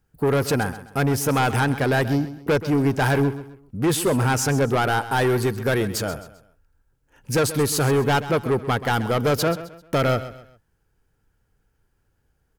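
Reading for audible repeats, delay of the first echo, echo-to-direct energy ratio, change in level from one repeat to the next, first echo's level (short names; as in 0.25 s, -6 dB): 3, 0.131 s, -13.5 dB, -9.5 dB, -14.0 dB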